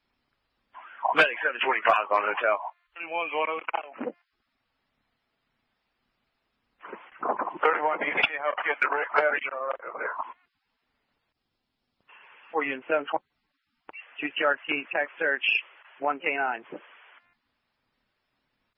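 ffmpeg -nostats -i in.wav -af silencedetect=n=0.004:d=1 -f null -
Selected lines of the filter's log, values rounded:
silence_start: 4.12
silence_end: 6.81 | silence_duration: 2.69
silence_start: 10.33
silence_end: 12.09 | silence_duration: 1.76
silence_start: 17.18
silence_end: 18.77 | silence_duration: 1.59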